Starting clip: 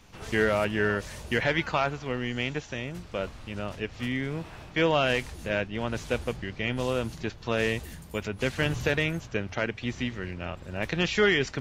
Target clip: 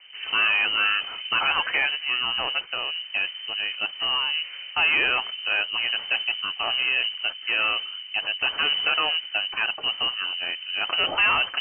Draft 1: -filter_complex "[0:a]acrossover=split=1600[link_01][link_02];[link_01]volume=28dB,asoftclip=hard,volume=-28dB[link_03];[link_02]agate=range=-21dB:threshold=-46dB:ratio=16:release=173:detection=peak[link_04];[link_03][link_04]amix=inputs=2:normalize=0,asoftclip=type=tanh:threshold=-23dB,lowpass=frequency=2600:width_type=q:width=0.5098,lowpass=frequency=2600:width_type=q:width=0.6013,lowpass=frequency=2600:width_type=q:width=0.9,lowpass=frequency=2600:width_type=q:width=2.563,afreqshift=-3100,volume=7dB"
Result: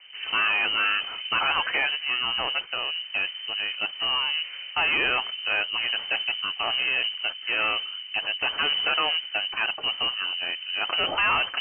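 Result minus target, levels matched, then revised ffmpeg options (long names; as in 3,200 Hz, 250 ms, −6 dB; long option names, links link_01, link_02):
gain into a clipping stage and back: distortion +10 dB
-filter_complex "[0:a]acrossover=split=1600[link_01][link_02];[link_01]volume=20dB,asoftclip=hard,volume=-20dB[link_03];[link_02]agate=range=-21dB:threshold=-46dB:ratio=16:release=173:detection=peak[link_04];[link_03][link_04]amix=inputs=2:normalize=0,asoftclip=type=tanh:threshold=-23dB,lowpass=frequency=2600:width_type=q:width=0.5098,lowpass=frequency=2600:width_type=q:width=0.6013,lowpass=frequency=2600:width_type=q:width=0.9,lowpass=frequency=2600:width_type=q:width=2.563,afreqshift=-3100,volume=7dB"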